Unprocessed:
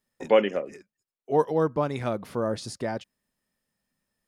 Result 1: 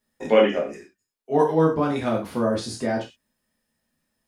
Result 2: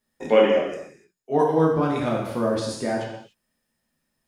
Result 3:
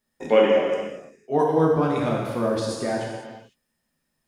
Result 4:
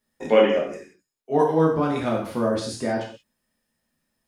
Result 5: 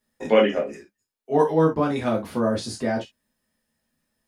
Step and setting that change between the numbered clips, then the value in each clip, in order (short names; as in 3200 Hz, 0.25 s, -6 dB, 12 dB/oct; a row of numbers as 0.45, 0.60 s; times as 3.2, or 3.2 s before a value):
non-linear reverb, gate: 140, 320, 530, 210, 90 ms